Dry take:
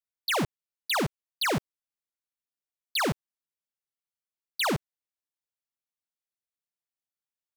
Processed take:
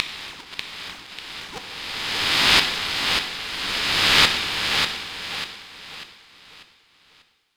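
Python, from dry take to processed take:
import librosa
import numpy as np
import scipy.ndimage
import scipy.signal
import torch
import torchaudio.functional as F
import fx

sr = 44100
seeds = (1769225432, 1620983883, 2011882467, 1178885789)

p1 = fx.spec_swells(x, sr, rise_s=2.28)
p2 = fx.weighting(p1, sr, curve='D')
p3 = 10.0 ** (-8.0 / 20.0) * np.tanh(p2 / 10.0 ** (-8.0 / 20.0))
p4 = p2 + (p3 * librosa.db_to_amplitude(-10.0))
p5 = fx.gate_flip(p4, sr, shuts_db=-7.0, range_db=-30)
p6 = p5 + fx.echo_feedback(p5, sr, ms=593, feedback_pct=38, wet_db=-6.0, dry=0)
p7 = fx.rev_plate(p6, sr, seeds[0], rt60_s=1.3, hf_ratio=0.95, predelay_ms=0, drr_db=5.0)
p8 = p7 * np.sin(2.0 * np.pi * 630.0 * np.arange(len(p7)) / sr)
y = p8 * librosa.db_to_amplitude(5.5)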